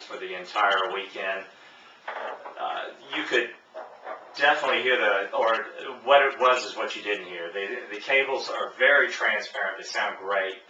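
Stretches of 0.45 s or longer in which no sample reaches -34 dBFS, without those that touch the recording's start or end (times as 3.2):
1.43–2.08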